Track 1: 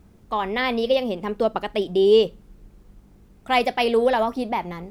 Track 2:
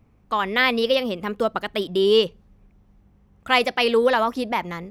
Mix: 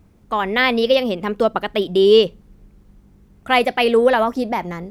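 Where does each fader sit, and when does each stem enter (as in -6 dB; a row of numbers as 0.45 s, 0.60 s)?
-2.0 dB, -0.5 dB; 0.00 s, 0.00 s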